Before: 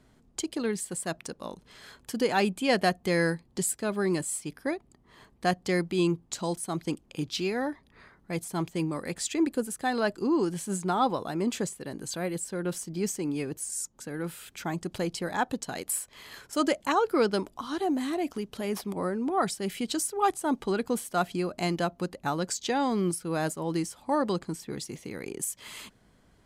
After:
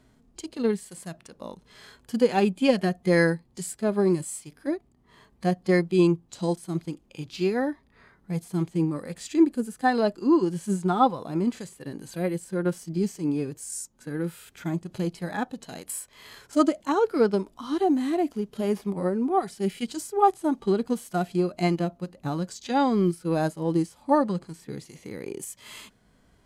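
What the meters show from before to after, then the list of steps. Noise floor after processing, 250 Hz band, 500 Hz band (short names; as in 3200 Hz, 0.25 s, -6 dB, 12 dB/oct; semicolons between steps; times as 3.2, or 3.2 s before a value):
-62 dBFS, +5.0 dB, +4.0 dB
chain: transient shaper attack +4 dB, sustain -2 dB; harmonic-percussive split percussive -17 dB; gain +5 dB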